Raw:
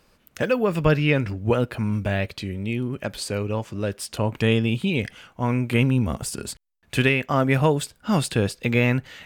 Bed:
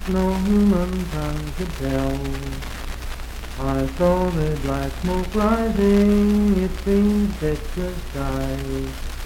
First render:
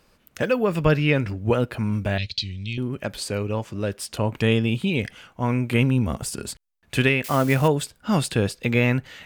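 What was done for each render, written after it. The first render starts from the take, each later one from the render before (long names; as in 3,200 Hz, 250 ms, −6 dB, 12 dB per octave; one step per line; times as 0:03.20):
0:02.18–0:02.78: drawn EQ curve 110 Hz 0 dB, 450 Hz −18 dB, 1,100 Hz −24 dB, 1,900 Hz −8 dB, 4,200 Hz +14 dB, 6,700 Hz +3 dB, 12,000 Hz −23 dB
0:07.24–0:07.68: spike at every zero crossing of −23.5 dBFS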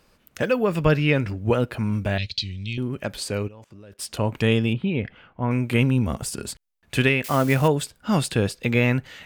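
0:03.48–0:03.99: output level in coarse steps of 22 dB
0:04.73–0:05.51: high-frequency loss of the air 420 metres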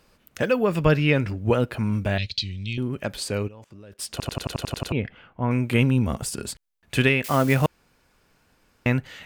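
0:04.11: stutter in place 0.09 s, 9 plays
0:07.66–0:08.86: fill with room tone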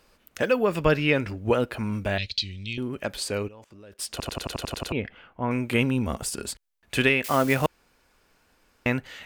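parametric band 130 Hz −7.5 dB 1.4 octaves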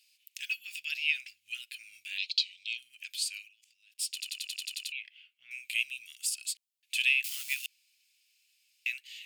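elliptic high-pass filter 2,500 Hz, stop band 60 dB
notch filter 6,000 Hz, Q 18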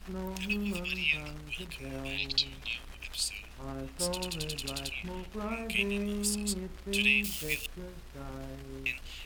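mix in bed −18 dB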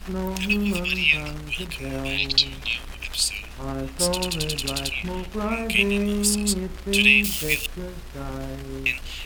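level +10 dB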